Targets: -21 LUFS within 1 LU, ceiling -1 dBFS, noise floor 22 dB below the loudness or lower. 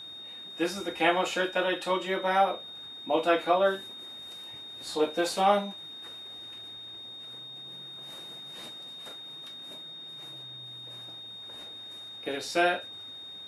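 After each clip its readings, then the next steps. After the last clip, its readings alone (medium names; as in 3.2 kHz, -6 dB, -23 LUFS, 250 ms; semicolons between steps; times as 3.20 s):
steady tone 3.7 kHz; tone level -41 dBFS; loudness -31.5 LUFS; peak level -11.0 dBFS; loudness target -21.0 LUFS
-> band-stop 3.7 kHz, Q 30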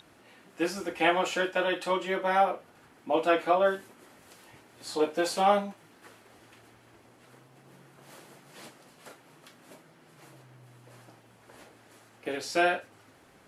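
steady tone not found; loudness -28.0 LUFS; peak level -11.0 dBFS; loudness target -21.0 LUFS
-> trim +7 dB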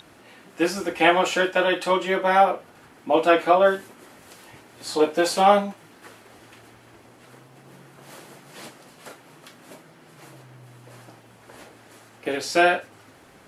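loudness -21.0 LUFS; peak level -4.0 dBFS; noise floor -52 dBFS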